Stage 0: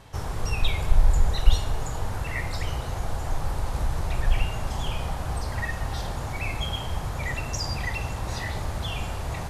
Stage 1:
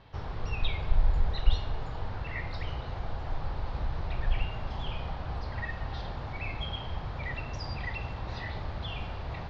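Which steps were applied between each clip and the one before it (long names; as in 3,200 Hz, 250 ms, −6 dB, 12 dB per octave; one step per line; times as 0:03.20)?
Butterworth low-pass 4,600 Hz 36 dB per octave
level −6 dB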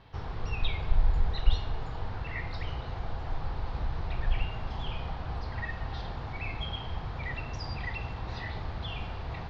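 notch filter 580 Hz, Q 12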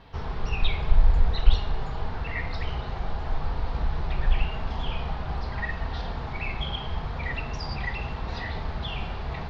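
flanger 0.83 Hz, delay 4.2 ms, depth 1 ms, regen −49%
highs frequency-modulated by the lows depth 0.54 ms
level +9 dB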